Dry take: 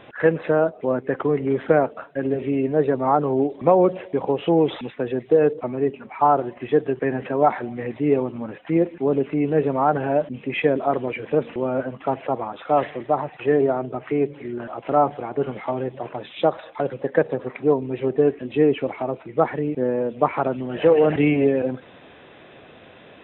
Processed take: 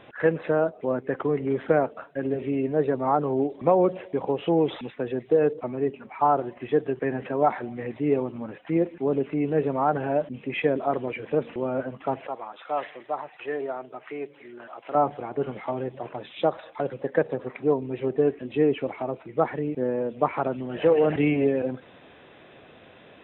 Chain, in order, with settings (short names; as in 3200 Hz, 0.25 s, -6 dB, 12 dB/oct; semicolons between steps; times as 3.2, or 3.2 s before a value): 12.27–14.95 HPF 1000 Hz 6 dB/oct; gain -4 dB